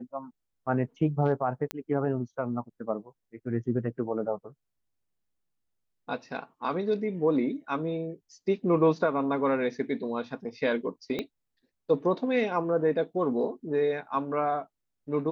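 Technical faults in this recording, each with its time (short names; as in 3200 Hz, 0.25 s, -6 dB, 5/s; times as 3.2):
1.71 pop -14 dBFS
11.19 pop -18 dBFS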